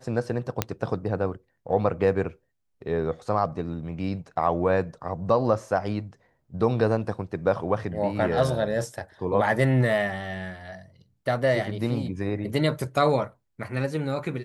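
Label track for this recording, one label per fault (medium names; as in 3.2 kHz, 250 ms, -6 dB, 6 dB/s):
0.620000	0.620000	pop -7 dBFS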